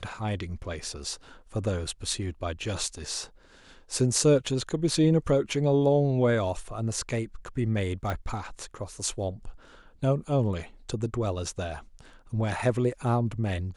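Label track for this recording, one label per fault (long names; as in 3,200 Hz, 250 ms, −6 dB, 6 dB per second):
8.100000	8.100000	click −17 dBFS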